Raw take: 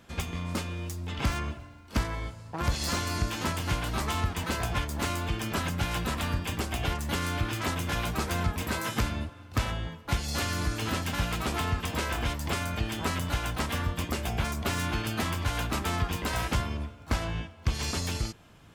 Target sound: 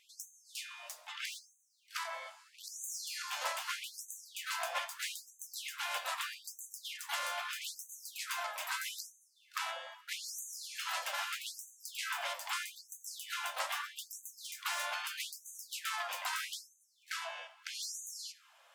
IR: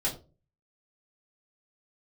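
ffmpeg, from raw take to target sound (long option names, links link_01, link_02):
-filter_complex "[0:a]asplit=2[link_01][link_02];[1:a]atrim=start_sample=2205,adelay=65[link_03];[link_02][link_03]afir=irnorm=-1:irlink=0,volume=-26dB[link_04];[link_01][link_04]amix=inputs=2:normalize=0,flanger=delay=4:depth=8.6:regen=70:speed=1:shape=sinusoidal,afftfilt=real='re*gte(b*sr/1024,490*pow(6100/490,0.5+0.5*sin(2*PI*0.79*pts/sr)))':imag='im*gte(b*sr/1024,490*pow(6100/490,0.5+0.5*sin(2*PI*0.79*pts/sr)))':win_size=1024:overlap=0.75,volume=1dB"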